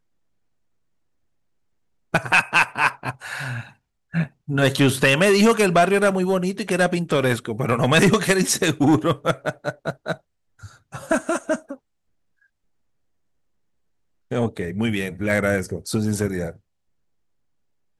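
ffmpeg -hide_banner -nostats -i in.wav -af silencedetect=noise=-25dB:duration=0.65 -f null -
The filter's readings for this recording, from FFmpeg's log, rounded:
silence_start: 0.00
silence_end: 2.14 | silence_duration: 2.14
silence_start: 10.13
silence_end: 10.94 | silence_duration: 0.82
silence_start: 11.73
silence_end: 14.32 | silence_duration: 2.59
silence_start: 16.49
silence_end: 17.99 | silence_duration: 1.50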